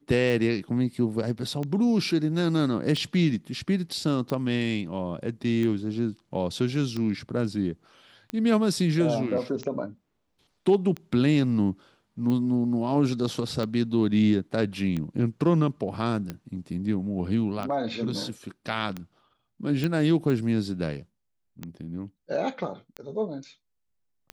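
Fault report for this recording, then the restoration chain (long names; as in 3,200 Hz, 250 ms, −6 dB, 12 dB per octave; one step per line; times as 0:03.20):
scratch tick 45 rpm
0:19.84: click −15 dBFS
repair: click removal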